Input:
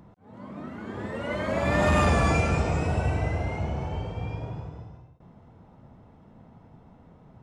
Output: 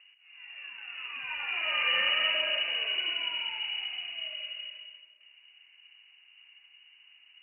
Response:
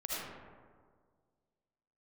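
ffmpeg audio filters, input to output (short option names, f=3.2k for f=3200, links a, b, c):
-filter_complex "[0:a]lowpass=f=2.6k:t=q:w=0.5098,lowpass=f=2.6k:t=q:w=0.6013,lowpass=f=2.6k:t=q:w=0.9,lowpass=f=2.6k:t=q:w=2.563,afreqshift=-3000,equalizer=f=110:t=o:w=1.6:g=-6.5,asplit=2[a][b];[1:a]atrim=start_sample=2205[c];[b][c]afir=irnorm=-1:irlink=0,volume=-8dB[d];[a][d]amix=inputs=2:normalize=0,volume=-8.5dB"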